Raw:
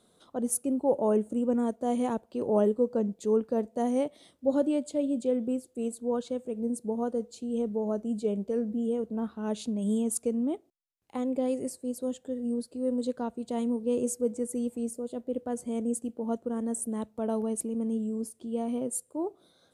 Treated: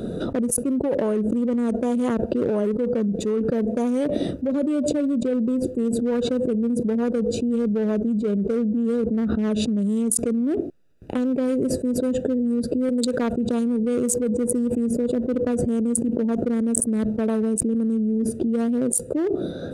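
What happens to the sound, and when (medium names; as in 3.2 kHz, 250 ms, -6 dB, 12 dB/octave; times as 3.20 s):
12.89–13.33 s: tilt EQ +2.5 dB/octave
whole clip: local Wiener filter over 41 samples; peaking EQ 800 Hz -9 dB 0.44 oct; level flattener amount 100%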